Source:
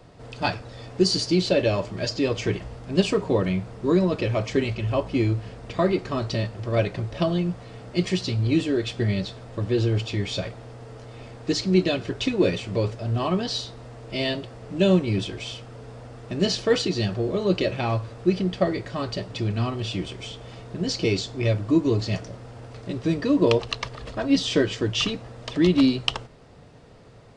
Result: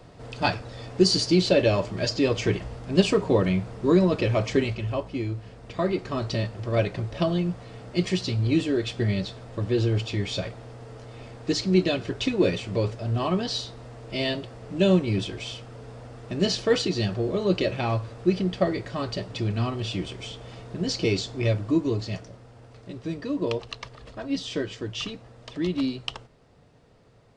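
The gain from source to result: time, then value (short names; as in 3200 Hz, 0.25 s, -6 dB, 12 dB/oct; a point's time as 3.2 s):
4.52 s +1 dB
5.22 s -7.5 dB
6.3 s -1 dB
21.48 s -1 dB
22.49 s -8 dB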